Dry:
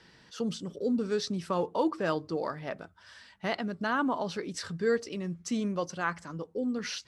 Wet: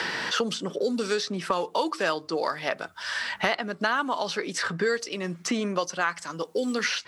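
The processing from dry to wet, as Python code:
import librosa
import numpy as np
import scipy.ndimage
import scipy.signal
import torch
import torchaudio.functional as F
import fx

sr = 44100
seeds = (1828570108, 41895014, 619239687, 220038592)

y = fx.highpass(x, sr, hz=910.0, slope=6)
y = fx.band_squash(y, sr, depth_pct=100)
y = F.gain(torch.from_numpy(y), 9.0).numpy()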